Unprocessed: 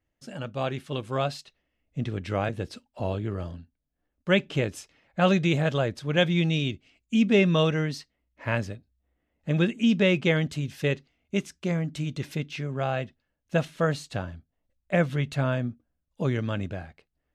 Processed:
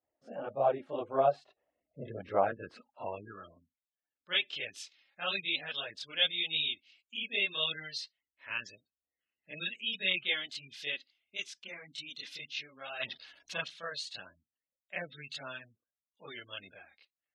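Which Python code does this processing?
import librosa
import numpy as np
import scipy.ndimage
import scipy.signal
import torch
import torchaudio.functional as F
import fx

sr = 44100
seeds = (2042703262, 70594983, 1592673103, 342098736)

y = fx.chorus_voices(x, sr, voices=2, hz=0.84, base_ms=28, depth_ms=2.1, mix_pct=65)
y = fx.power_curve(y, sr, exponent=0.5, at=(13.0, 13.64))
y = fx.spec_gate(y, sr, threshold_db=-30, keep='strong')
y = fx.filter_sweep_bandpass(y, sr, from_hz=670.0, to_hz=3900.0, start_s=2.2, end_s=3.99, q=2.1)
y = F.gain(torch.from_numpy(y), 7.0).numpy()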